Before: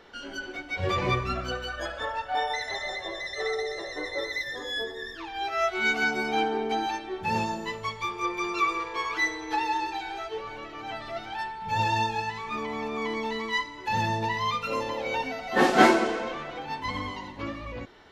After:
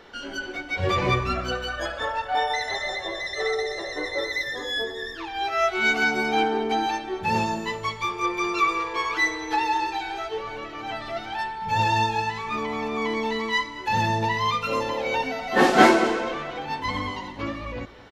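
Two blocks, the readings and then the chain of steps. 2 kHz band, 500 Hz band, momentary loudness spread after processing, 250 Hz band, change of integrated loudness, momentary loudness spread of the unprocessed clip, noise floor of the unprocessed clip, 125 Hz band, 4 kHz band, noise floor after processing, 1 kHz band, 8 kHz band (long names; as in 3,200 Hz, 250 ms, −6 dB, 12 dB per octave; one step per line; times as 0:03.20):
+3.5 dB, +3.5 dB, 11 LU, +3.5 dB, +3.5 dB, 11 LU, −42 dBFS, +4.0 dB, +4.0 dB, −37 dBFS, +4.0 dB, +4.0 dB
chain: single-tap delay 220 ms −18 dB
in parallel at −11 dB: soft clipping −21.5 dBFS, distortion −10 dB
on the sum: level +2 dB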